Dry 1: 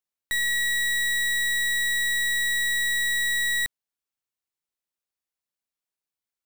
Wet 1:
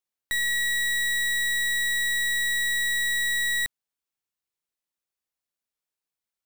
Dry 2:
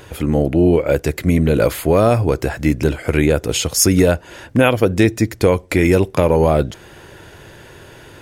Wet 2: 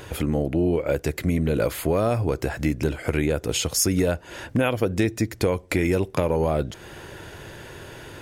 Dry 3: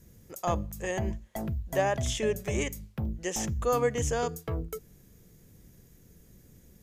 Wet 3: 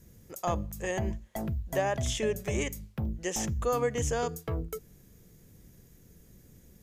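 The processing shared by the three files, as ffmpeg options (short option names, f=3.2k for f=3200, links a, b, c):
-af "acompressor=threshold=-25dB:ratio=2"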